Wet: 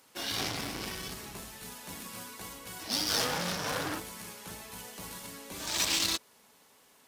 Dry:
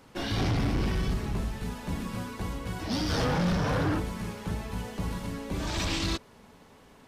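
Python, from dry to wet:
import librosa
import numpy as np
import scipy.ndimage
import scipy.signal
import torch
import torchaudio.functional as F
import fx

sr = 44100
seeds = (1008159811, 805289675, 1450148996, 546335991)

y = fx.riaa(x, sr, side='recording')
y = fx.cheby_harmonics(y, sr, harmonics=(3, 7), levels_db=(-27, -24), full_scale_db=-14.5)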